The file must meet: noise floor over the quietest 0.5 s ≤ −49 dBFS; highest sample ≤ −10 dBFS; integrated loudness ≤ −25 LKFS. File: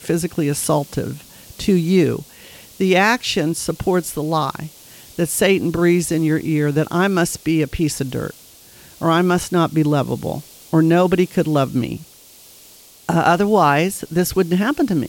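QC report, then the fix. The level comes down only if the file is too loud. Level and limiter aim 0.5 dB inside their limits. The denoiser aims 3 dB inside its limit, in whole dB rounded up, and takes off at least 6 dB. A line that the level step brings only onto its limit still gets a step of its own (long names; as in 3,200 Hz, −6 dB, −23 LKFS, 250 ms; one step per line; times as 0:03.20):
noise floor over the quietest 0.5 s −45 dBFS: out of spec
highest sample −4.0 dBFS: out of spec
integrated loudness −18.0 LKFS: out of spec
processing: level −7.5 dB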